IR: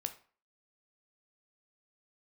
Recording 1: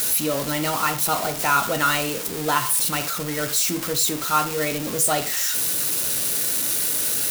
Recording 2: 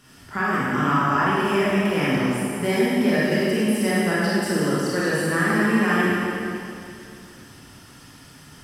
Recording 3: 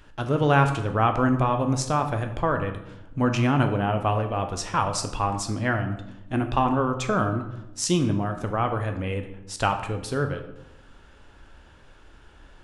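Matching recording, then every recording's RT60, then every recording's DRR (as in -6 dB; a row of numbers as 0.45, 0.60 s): 1; 0.40, 2.5, 0.90 s; 7.5, -8.0, 6.0 dB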